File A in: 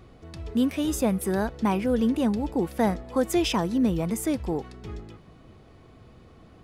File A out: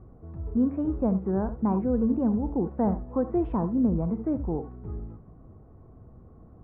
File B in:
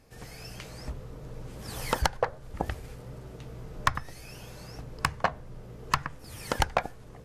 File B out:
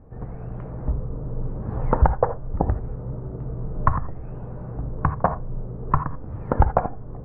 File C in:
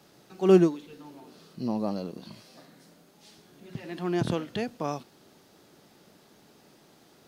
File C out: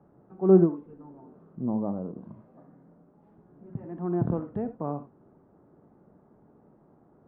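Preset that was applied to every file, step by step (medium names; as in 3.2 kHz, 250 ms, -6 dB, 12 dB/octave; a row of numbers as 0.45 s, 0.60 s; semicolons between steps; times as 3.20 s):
low-pass 1.2 kHz 24 dB/octave; bass shelf 240 Hz +8 dB; gated-style reverb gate 100 ms rising, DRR 11 dB; normalise loudness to -27 LUFS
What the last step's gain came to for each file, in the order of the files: -4.5 dB, +6.0 dB, -3.0 dB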